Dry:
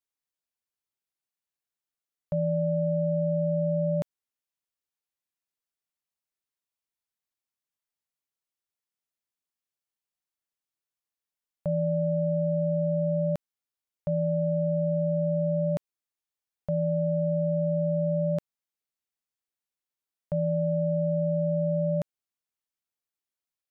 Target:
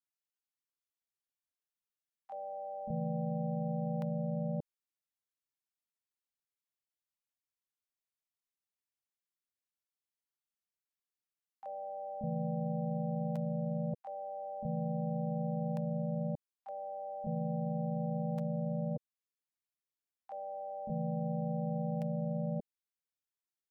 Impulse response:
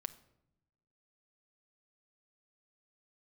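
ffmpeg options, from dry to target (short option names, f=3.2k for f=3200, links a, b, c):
-filter_complex "[0:a]asplit=3[a][b][c];[b]asetrate=37084,aresample=44100,atempo=1.18921,volume=-10dB[d];[c]asetrate=58866,aresample=44100,atempo=0.749154,volume=-5dB[e];[a][d][e]amix=inputs=3:normalize=0,acrossover=split=620[f][g];[f]adelay=580[h];[h][g]amix=inputs=2:normalize=0,volume=-8.5dB"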